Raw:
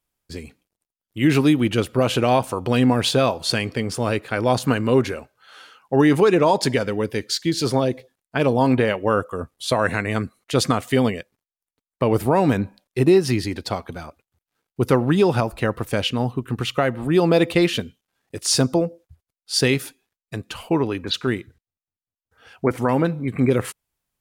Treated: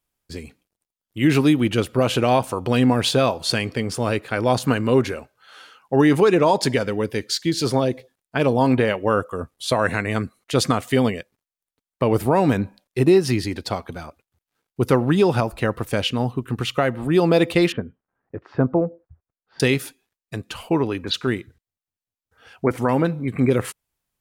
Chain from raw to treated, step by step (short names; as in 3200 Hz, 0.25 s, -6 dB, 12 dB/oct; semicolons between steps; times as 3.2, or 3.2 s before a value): 17.72–19.6 LPF 1600 Hz 24 dB/oct